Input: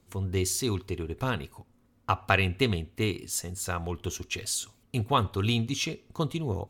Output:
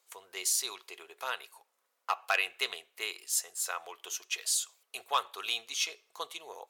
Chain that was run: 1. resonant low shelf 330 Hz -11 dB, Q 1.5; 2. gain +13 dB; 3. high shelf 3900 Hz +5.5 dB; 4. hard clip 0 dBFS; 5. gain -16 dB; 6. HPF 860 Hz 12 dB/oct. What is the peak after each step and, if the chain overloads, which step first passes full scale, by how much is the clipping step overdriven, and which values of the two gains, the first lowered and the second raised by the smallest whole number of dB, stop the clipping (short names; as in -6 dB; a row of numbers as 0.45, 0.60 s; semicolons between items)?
-5.0, +8.0, +9.0, 0.0, -16.0, -12.5 dBFS; step 2, 9.0 dB; step 2 +4 dB, step 5 -7 dB